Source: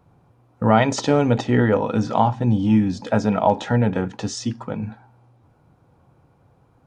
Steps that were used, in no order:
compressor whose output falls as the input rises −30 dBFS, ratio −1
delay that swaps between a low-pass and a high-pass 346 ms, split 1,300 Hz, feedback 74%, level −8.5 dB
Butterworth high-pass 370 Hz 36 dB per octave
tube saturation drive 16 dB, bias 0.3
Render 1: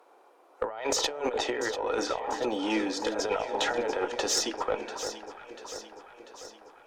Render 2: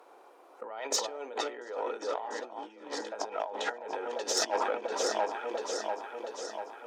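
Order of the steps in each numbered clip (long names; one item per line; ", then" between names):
Butterworth high-pass, then compressor whose output falls as the input rises, then tube saturation, then delay that swaps between a low-pass and a high-pass
delay that swaps between a low-pass and a high-pass, then compressor whose output falls as the input rises, then tube saturation, then Butterworth high-pass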